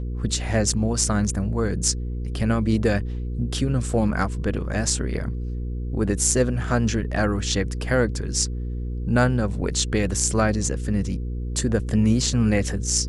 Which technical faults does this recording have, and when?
hum 60 Hz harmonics 8 -28 dBFS

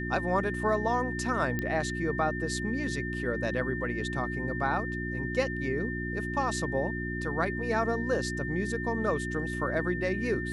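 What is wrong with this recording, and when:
hum 60 Hz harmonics 6 -35 dBFS
whine 1.8 kHz -36 dBFS
1.59 s: pop -18 dBFS

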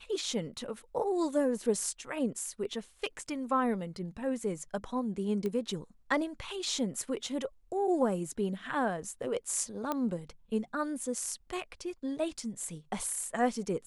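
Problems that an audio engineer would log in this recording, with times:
5.46 s: pop -23 dBFS
9.92 s: pop -18 dBFS

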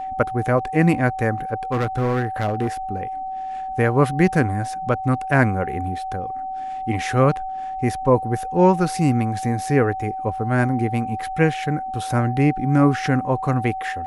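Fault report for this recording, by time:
whine 760 Hz -26 dBFS
1.72–2.68 s: clipped -17 dBFS

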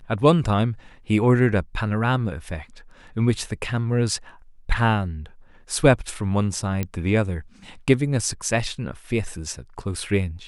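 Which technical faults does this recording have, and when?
6.83 s: pop -12 dBFS

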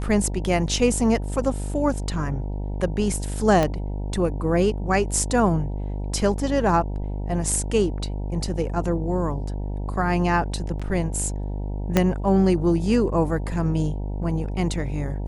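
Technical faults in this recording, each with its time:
buzz 50 Hz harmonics 19 -28 dBFS
3.63 s: pop -9 dBFS
10.79–10.80 s: dropout 5.8 ms
11.97 s: pop -4 dBFS

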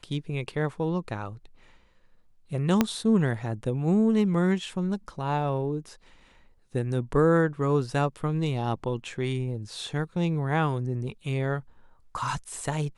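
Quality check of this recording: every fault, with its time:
2.81 s: pop -7 dBFS

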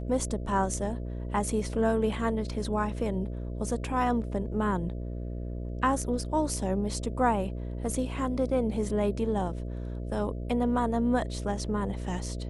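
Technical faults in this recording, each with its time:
buzz 60 Hz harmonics 11 -35 dBFS

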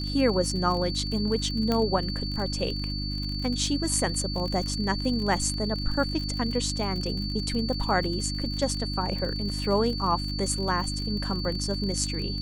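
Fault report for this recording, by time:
crackle 45 per s -32 dBFS
hum 50 Hz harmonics 6 -32 dBFS
whine 4.5 kHz -34 dBFS
1.72 s: pop -13 dBFS

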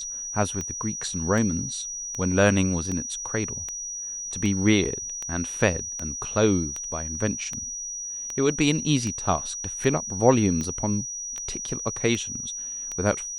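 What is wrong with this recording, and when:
tick 78 rpm -18 dBFS
whine 5.8 kHz -31 dBFS
10.64 s: dropout 2.4 ms

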